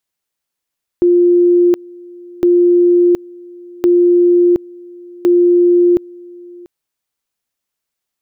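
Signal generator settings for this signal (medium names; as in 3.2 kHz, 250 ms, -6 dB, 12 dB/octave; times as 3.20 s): two-level tone 351 Hz -6.5 dBFS, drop 25 dB, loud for 0.72 s, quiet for 0.69 s, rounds 4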